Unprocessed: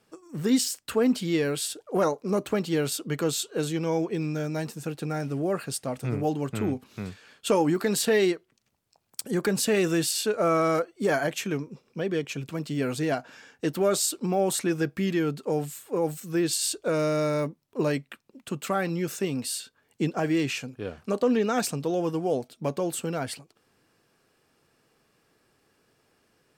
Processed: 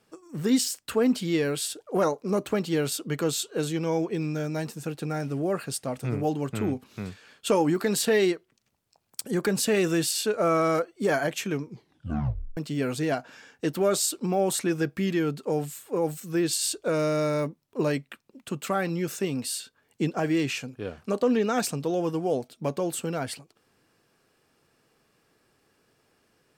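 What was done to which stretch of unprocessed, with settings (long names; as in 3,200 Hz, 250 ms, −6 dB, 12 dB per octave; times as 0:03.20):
0:11.65: tape stop 0.92 s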